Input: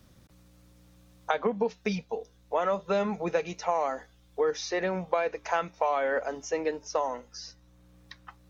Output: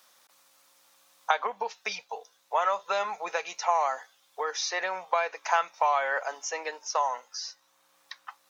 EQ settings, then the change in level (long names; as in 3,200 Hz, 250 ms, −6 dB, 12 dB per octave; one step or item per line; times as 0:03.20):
high-pass with resonance 890 Hz, resonance Q 1.7
high-shelf EQ 3,000 Hz +7.5 dB
0.0 dB